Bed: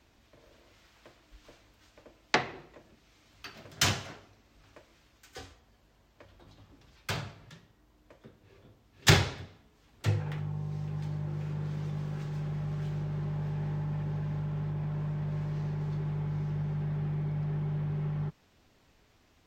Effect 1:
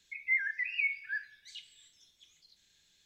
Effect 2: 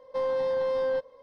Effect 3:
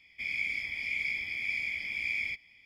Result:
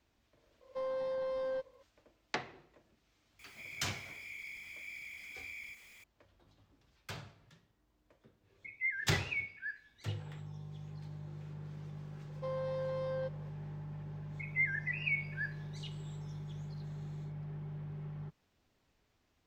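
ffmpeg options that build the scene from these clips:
ffmpeg -i bed.wav -i cue0.wav -i cue1.wav -i cue2.wav -filter_complex "[2:a]asplit=2[link_01][link_02];[1:a]asplit=2[link_03][link_04];[0:a]volume=-11dB[link_05];[3:a]aeval=exprs='val(0)+0.5*0.0141*sgn(val(0))':channel_layout=same[link_06];[link_03]highshelf=frequency=4800:gain=-11.5[link_07];[link_02]highpass=380[link_08];[link_01]atrim=end=1.22,asetpts=PTS-STARTPTS,volume=-9.5dB,afade=type=in:duration=0.004:curve=hsin,afade=type=out:start_time=1.216:duration=0.004:curve=hsin,adelay=610[link_09];[link_06]atrim=end=2.65,asetpts=PTS-STARTPTS,volume=-16dB,afade=type=in:duration=0.004:curve=hsin,afade=type=out:start_time=2.646:duration=0.004:curve=hsin,adelay=3390[link_10];[link_07]atrim=end=3.05,asetpts=PTS-STARTPTS,volume=-4dB,afade=type=in:duration=0.1,afade=type=out:start_time=2.95:duration=0.1,adelay=8530[link_11];[link_08]atrim=end=1.22,asetpts=PTS-STARTPTS,volume=-10dB,afade=type=in:duration=0.004:curve=hsin,afade=type=out:start_time=1.216:duration=0.004:curve=hsin,adelay=12280[link_12];[link_04]atrim=end=3.05,asetpts=PTS-STARTPTS,volume=-3dB,afade=type=in:duration=0.1,afade=type=out:start_time=2.95:duration=0.1,adelay=629748S[link_13];[link_05][link_09][link_10][link_11][link_12][link_13]amix=inputs=6:normalize=0" out.wav

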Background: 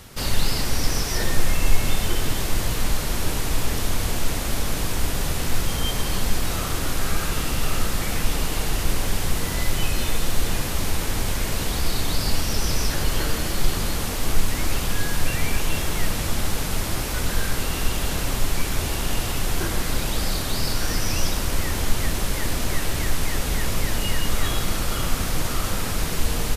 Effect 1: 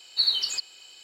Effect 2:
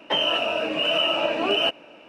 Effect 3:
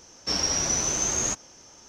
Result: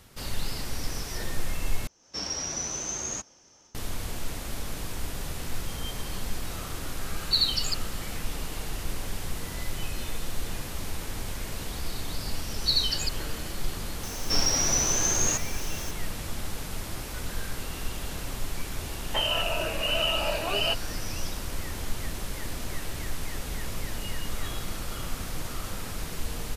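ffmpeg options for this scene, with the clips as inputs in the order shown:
ffmpeg -i bed.wav -i cue0.wav -i cue1.wav -i cue2.wav -filter_complex "[3:a]asplit=2[link_01][link_02];[1:a]asplit=2[link_03][link_04];[0:a]volume=-10dB[link_05];[link_01]dynaudnorm=framelen=120:gausssize=3:maxgain=6.5dB[link_06];[link_03]aecho=1:1:3.8:0.65[link_07];[link_02]aeval=exprs='val(0)+0.5*0.0158*sgn(val(0))':channel_layout=same[link_08];[2:a]highpass=490[link_09];[link_05]asplit=2[link_10][link_11];[link_10]atrim=end=1.874[link_12];[link_06]atrim=end=1.88,asetpts=PTS-STARTPTS,volume=-13.5dB[link_13];[link_11]atrim=start=3.746[link_14];[link_07]atrim=end=1.03,asetpts=PTS-STARTPTS,volume=-2.5dB,afade=type=in:duration=0.004:curve=hsin,afade=type=out:start_time=1.026:duration=0.004:curve=hsin,adelay=314874S[link_15];[link_04]atrim=end=1.03,asetpts=PTS-STARTPTS,volume=-2dB,afade=type=in:duration=0.004:curve=hsin,afade=type=out:start_time=1.026:duration=0.004:curve=hsin,adelay=12490[link_16];[link_08]atrim=end=1.88,asetpts=PTS-STARTPTS,volume=-1dB,afade=type=in:duration=0.004:curve=hsin,afade=type=out:start_time=1.876:duration=0.004:curve=hsin,adelay=14030[link_17];[link_09]atrim=end=2.08,asetpts=PTS-STARTPTS,volume=-4.5dB,afade=type=in:duration=0.004:curve=hsin,afade=type=out:start_time=2.076:duration=0.004:curve=hsin,adelay=19040[link_18];[link_12][link_13]acrossfade=duration=0.004:curve1=hsin:curve2=hsin[link_19];[link_19][link_14]acrossfade=duration=0.004:curve1=hsin:curve2=hsin[link_20];[link_20][link_15][link_16][link_17][link_18]amix=inputs=5:normalize=0" out.wav

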